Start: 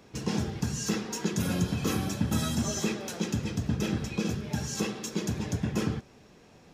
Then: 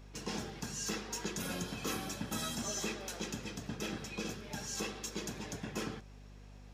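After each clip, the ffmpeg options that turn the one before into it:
-af "highpass=f=500:p=1,aeval=exprs='val(0)+0.00398*(sin(2*PI*50*n/s)+sin(2*PI*2*50*n/s)/2+sin(2*PI*3*50*n/s)/3+sin(2*PI*4*50*n/s)/4+sin(2*PI*5*50*n/s)/5)':c=same,volume=0.631"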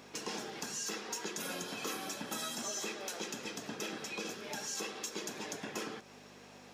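-af "highpass=300,acompressor=threshold=0.00355:ratio=2.5,volume=2.66"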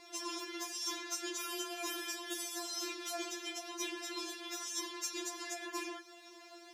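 -af "afftfilt=real='re*4*eq(mod(b,16),0)':imag='im*4*eq(mod(b,16),0)':win_size=2048:overlap=0.75,volume=1.5"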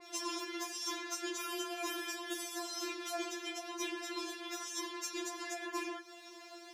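-af "adynamicequalizer=threshold=0.002:dfrequency=2900:dqfactor=0.7:tfrequency=2900:tqfactor=0.7:attack=5:release=100:ratio=0.375:range=2.5:mode=cutabove:tftype=highshelf,volume=1.33"

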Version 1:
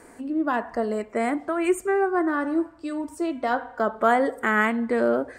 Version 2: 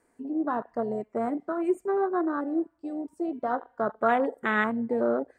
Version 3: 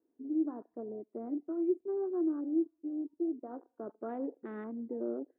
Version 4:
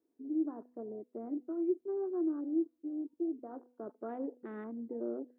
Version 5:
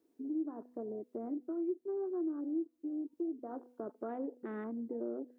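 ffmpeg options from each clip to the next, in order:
-af "afwtdn=0.0631,volume=0.668"
-af "bandpass=f=320:t=q:w=3.9:csg=0,volume=0.794"
-af "bandreject=f=246.9:t=h:w=4,bandreject=f=493.8:t=h:w=4,volume=0.841"
-af "acompressor=threshold=0.00447:ratio=2,volume=2"

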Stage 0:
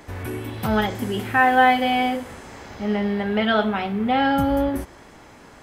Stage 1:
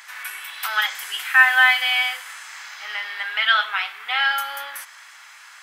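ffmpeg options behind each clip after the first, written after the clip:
-af "highpass=f=1300:w=0.5412,highpass=f=1300:w=1.3066,volume=2.51"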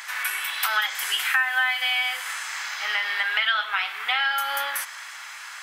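-af "acompressor=threshold=0.0447:ratio=5,volume=2"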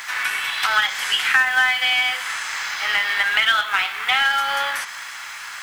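-filter_complex "[0:a]acrusher=bits=3:mode=log:mix=0:aa=0.000001,acrossover=split=7900[s0][s1];[s1]acompressor=threshold=0.00355:ratio=4:attack=1:release=60[s2];[s0][s2]amix=inputs=2:normalize=0,volume=1.78"

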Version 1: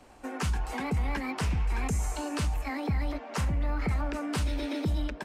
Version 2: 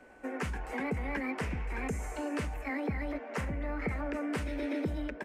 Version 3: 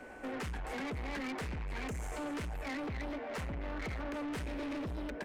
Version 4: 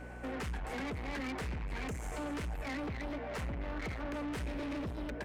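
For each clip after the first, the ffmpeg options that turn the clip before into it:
-af "aeval=exprs='val(0)+0.00126*sin(2*PI*1500*n/s)':c=same,equalizer=f=250:t=o:w=1:g=6,equalizer=f=500:t=o:w=1:g=10,equalizer=f=2000:t=o:w=1:g=11,equalizer=f=4000:t=o:w=1:g=-5,volume=0.355"
-filter_complex "[0:a]asplit=2[s0][s1];[s1]acompressor=threshold=0.00794:ratio=6,volume=0.944[s2];[s0][s2]amix=inputs=2:normalize=0,asoftclip=type=tanh:threshold=0.0133,volume=1.12"
-af "aeval=exprs='val(0)+0.00447*(sin(2*PI*60*n/s)+sin(2*PI*2*60*n/s)/2+sin(2*PI*3*60*n/s)/3+sin(2*PI*4*60*n/s)/4+sin(2*PI*5*60*n/s)/5)':c=same"

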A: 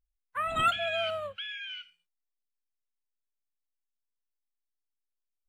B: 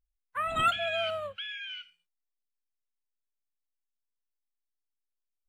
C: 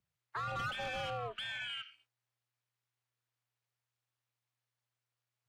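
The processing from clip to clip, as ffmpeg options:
-af anull
-filter_complex "[0:a]asplit=2[s0][s1];[s1]highpass=f=720:p=1,volume=14.1,asoftclip=type=tanh:threshold=0.168[s2];[s0][s2]amix=inputs=2:normalize=0,lowpass=f=2100:p=1,volume=0.501,acrossover=split=130[s3][s4];[s4]acompressor=threshold=0.0126:ratio=2.5[s5];[s3][s5]amix=inputs=2:normalize=0,aeval=exprs='val(0)*sin(2*PI*120*n/s)':c=same,volume=0.794"

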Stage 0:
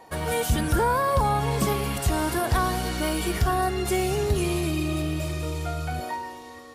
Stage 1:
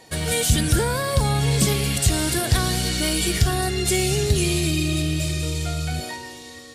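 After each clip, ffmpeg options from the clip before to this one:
-af "equalizer=f=125:t=o:w=1:g=6,equalizer=f=1000:t=o:w=1:g=-10,equalizer=f=2000:t=o:w=1:g=3,equalizer=f=4000:t=o:w=1:g=7,equalizer=f=8000:t=o:w=1:g=9,volume=1.26"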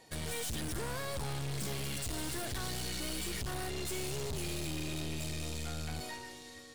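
-af "aeval=exprs='(tanh(31.6*val(0)+0.7)-tanh(0.7))/31.6':c=same,volume=0.473"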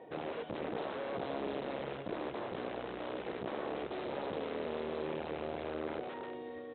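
-af "acompressor=threshold=0.00891:ratio=8,aresample=8000,aeval=exprs='(mod(94.4*val(0)+1,2)-1)/94.4':c=same,aresample=44100,bandpass=f=470:t=q:w=1.4:csg=0,volume=4.47"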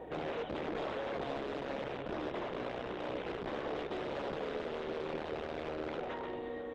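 -af "aeval=exprs='val(0)+0.000501*(sin(2*PI*60*n/s)+sin(2*PI*2*60*n/s)/2+sin(2*PI*3*60*n/s)/3+sin(2*PI*4*60*n/s)/4+sin(2*PI*5*60*n/s)/5)':c=same,aeval=exprs='(tanh(79.4*val(0)+0.15)-tanh(0.15))/79.4':c=same,volume=2.11" -ar 48000 -c:a libopus -b:a 16k

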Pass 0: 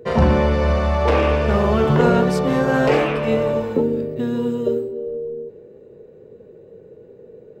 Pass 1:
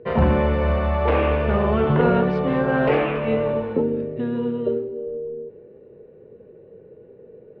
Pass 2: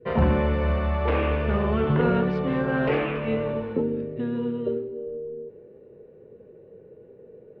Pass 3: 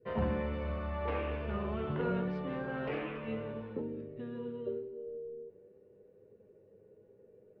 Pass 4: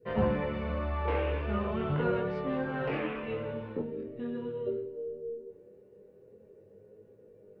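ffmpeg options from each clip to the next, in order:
-af "lowpass=f=3100:w=0.5412,lowpass=f=3100:w=1.3066,volume=0.75"
-af "adynamicequalizer=threshold=0.0178:dfrequency=710:dqfactor=1.2:tfrequency=710:tqfactor=1.2:attack=5:release=100:ratio=0.375:range=2.5:mode=cutabove:tftype=bell,volume=0.75"
-af "flanger=delay=9.6:depth=1:regen=46:speed=0.29:shape=sinusoidal,volume=0.398"
-af "flanger=delay=18.5:depth=6.8:speed=0.42,volume=2.37"

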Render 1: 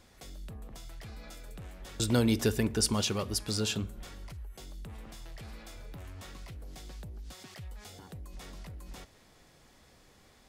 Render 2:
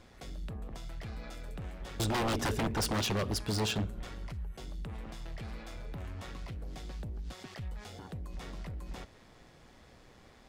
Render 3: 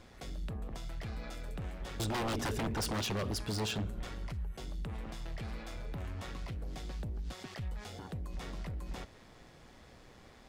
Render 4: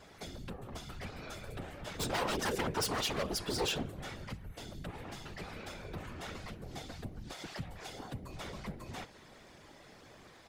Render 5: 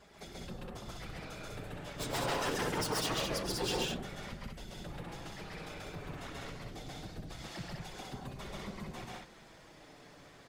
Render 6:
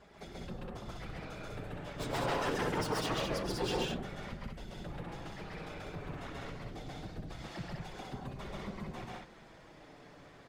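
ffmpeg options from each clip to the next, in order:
-af "lowpass=f=3100:p=1,tremolo=f=120:d=0.4,aeval=exprs='0.0282*(abs(mod(val(0)/0.0282+3,4)-2)-1)':c=same,volume=1.88"
-af "alimiter=level_in=2:limit=0.0631:level=0:latency=1:release=14,volume=0.501,volume=1.12"
-af "lowshelf=f=140:g=-9,aecho=1:1:6.8:0.65,afftfilt=real='hypot(re,im)*cos(2*PI*random(0))':imag='hypot(re,im)*sin(2*PI*random(1))':win_size=512:overlap=0.75,volume=2.24"
-filter_complex "[0:a]flanger=delay=4.9:depth=2.4:regen=-46:speed=0.24:shape=triangular,asplit=2[s0][s1];[s1]aecho=0:1:99.13|134.1|198.3:0.282|1|0.708[s2];[s0][s2]amix=inputs=2:normalize=0"
-af "highshelf=f=3900:g=-10,volume=1.19"

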